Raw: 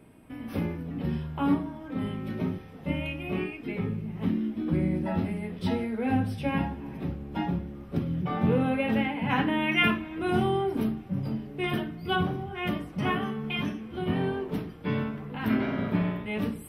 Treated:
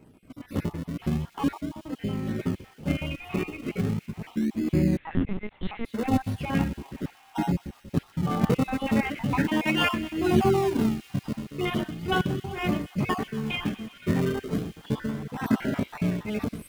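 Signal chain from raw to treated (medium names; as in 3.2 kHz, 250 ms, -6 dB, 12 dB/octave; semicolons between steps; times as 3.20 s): random holes in the spectrogram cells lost 41%; level rider gain up to 3.5 dB; in parallel at -8 dB: decimation with a swept rate 37×, swing 100% 0.37 Hz; 10.02–10.53 s: on the sum: doubling 13 ms -6 dB; on a send: feedback echo behind a high-pass 124 ms, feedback 85%, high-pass 3.1 kHz, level -14 dB; 4.97–5.85 s: on the sum: LPC vocoder at 8 kHz pitch kept; trim -2 dB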